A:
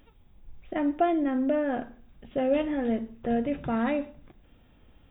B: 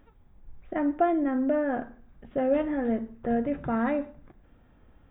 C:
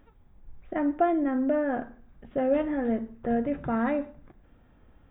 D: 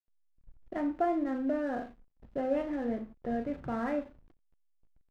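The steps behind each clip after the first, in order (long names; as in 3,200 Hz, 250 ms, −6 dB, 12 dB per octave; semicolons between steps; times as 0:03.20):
high shelf with overshoot 2,200 Hz −7.5 dB, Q 1.5
no processing that can be heard
flutter between parallel walls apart 6.4 metres, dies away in 0.28 s; slack as between gear wheels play −41 dBFS; level −6 dB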